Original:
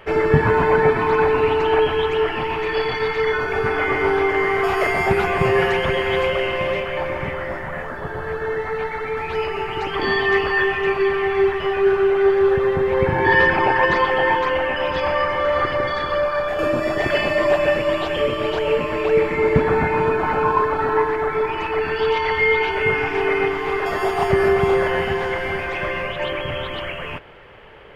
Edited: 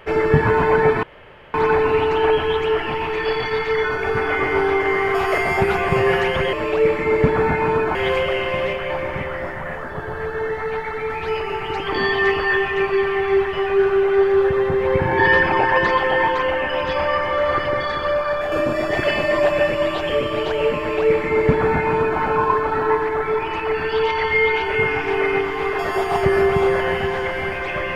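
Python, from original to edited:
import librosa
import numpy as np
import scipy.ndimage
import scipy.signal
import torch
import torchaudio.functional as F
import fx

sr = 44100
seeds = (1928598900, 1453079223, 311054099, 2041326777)

y = fx.edit(x, sr, fx.insert_room_tone(at_s=1.03, length_s=0.51),
    fx.duplicate(start_s=18.85, length_s=1.42, to_s=6.02), tone=tone)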